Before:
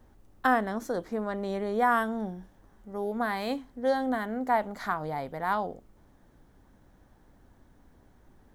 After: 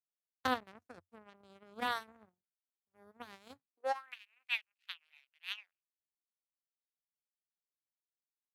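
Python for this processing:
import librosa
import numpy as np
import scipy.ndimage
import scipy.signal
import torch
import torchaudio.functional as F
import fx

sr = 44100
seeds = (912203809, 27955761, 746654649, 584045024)

y = x + 10.0 ** (-23.5 / 20.0) * np.pad(x, (int(271 * sr / 1000.0), 0))[:len(x)]
y = fx.power_curve(y, sr, exponent=3.0)
y = fx.filter_sweep_highpass(y, sr, from_hz=91.0, to_hz=2600.0, start_s=3.53, end_s=4.14, q=6.1)
y = F.gain(torch.from_numpy(y), -3.5).numpy()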